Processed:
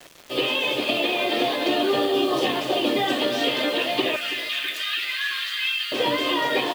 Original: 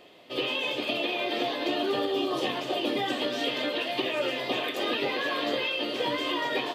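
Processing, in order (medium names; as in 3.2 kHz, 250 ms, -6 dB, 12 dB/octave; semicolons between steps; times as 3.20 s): word length cut 8-bit, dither none; 4.16–5.92 s: steep high-pass 1.4 kHz 36 dB/octave; feedback delay 329 ms, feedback 43%, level -14.5 dB; trim +6 dB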